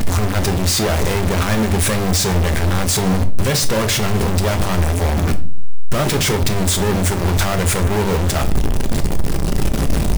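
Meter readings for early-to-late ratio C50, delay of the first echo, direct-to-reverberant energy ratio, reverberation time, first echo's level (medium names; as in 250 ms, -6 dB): 15.0 dB, no echo, 7.5 dB, 0.45 s, no echo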